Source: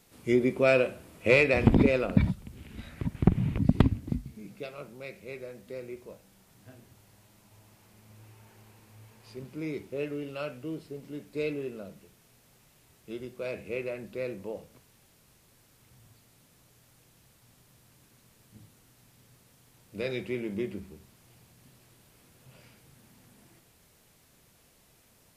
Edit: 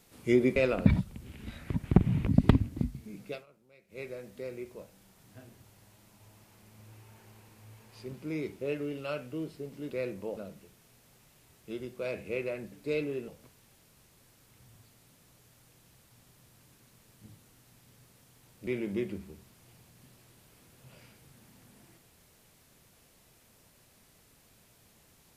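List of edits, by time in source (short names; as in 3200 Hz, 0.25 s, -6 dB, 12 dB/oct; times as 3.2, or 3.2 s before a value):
0.56–1.87 cut
4.65–5.31 dip -18.5 dB, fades 0.12 s
11.21–11.77 swap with 14.12–14.59
19.98–20.29 cut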